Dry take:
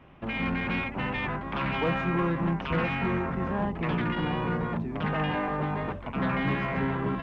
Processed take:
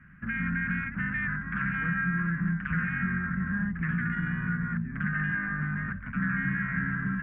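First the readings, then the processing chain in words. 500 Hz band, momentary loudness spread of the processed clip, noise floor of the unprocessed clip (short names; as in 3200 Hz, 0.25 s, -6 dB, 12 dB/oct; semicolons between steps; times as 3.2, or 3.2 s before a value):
-24.5 dB, 3 LU, -38 dBFS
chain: EQ curve 130 Hz 0 dB, 190 Hz +6 dB, 390 Hz -22 dB, 630 Hz -25 dB, 920 Hz -21 dB, 1600 Hz +13 dB, 2800 Hz -14 dB, 4000 Hz -27 dB, 6000 Hz -20 dB; compressor 2:1, threshold -28 dBFS, peak gain reduction 5 dB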